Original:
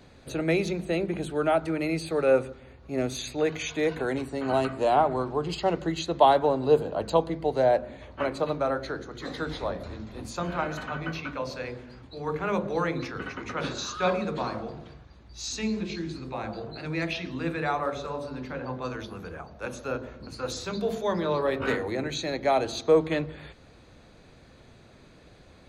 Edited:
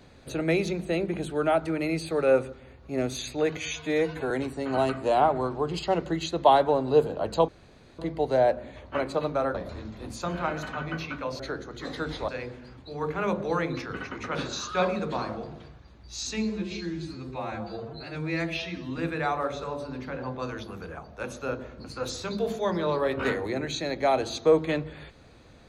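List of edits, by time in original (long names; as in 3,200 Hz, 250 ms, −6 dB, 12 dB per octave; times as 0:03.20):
0:03.57–0:04.06: time-stretch 1.5×
0:07.24: splice in room tone 0.50 s
0:08.80–0:09.69: move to 0:11.54
0:15.75–0:17.41: time-stretch 1.5×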